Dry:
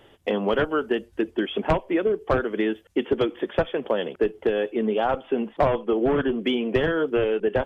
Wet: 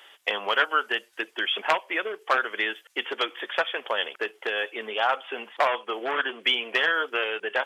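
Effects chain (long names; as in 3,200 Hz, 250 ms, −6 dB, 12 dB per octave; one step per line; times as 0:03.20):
high-pass filter 1,300 Hz 12 dB per octave
level +8.5 dB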